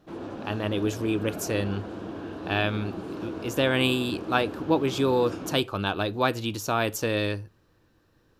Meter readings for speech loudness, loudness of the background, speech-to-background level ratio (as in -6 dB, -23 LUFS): -27.0 LUFS, -37.0 LUFS, 10.0 dB